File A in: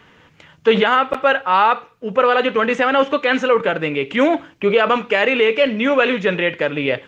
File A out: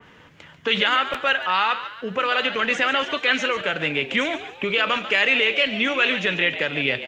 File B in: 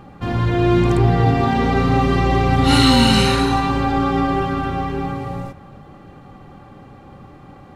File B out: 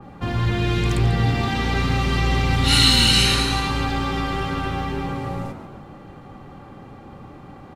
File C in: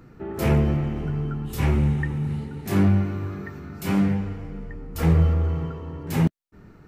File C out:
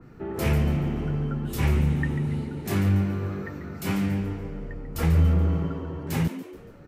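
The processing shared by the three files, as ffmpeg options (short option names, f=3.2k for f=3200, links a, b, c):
-filter_complex "[0:a]acrossover=split=120|1500|3800[a][b][c][d];[b]acompressor=threshold=-26dB:ratio=6[e];[a][e][c][d]amix=inputs=4:normalize=0,asplit=5[f][g][h][i][j];[g]adelay=142,afreqshift=100,volume=-12dB[k];[h]adelay=284,afreqshift=200,volume=-19.5dB[l];[i]adelay=426,afreqshift=300,volume=-27.1dB[m];[j]adelay=568,afreqshift=400,volume=-34.6dB[n];[f][k][l][m][n]amix=inputs=5:normalize=0,adynamicequalizer=threshold=0.0224:dfrequency=2400:dqfactor=0.7:tfrequency=2400:tqfactor=0.7:attack=5:release=100:ratio=0.375:range=2:mode=boostabove:tftype=highshelf"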